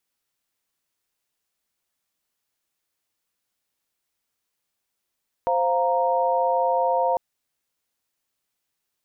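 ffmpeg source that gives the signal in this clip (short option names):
-f lavfi -i "aevalsrc='0.0708*(sin(2*PI*523.25*t)+sin(2*PI*698.46*t)+sin(2*PI*932.33*t))':d=1.7:s=44100"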